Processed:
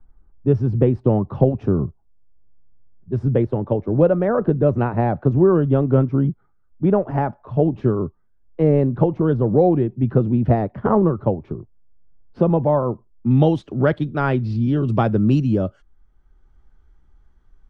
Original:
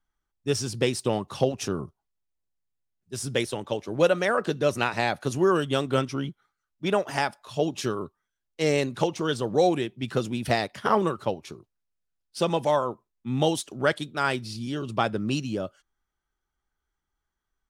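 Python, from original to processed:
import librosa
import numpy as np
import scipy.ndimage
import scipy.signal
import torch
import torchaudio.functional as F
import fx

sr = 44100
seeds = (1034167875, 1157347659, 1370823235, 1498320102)

y = fx.lowpass(x, sr, hz=fx.steps((0.0, 1200.0), (13.31, 4000.0), (14.88, 8700.0)), slope=12)
y = fx.tilt_eq(y, sr, slope=-4.0)
y = fx.band_squash(y, sr, depth_pct=40)
y = y * 10.0 ** (2.5 / 20.0)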